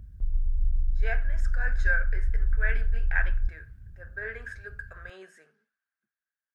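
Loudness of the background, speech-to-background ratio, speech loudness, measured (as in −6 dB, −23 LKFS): −31.5 LKFS, −2.5 dB, −34.0 LKFS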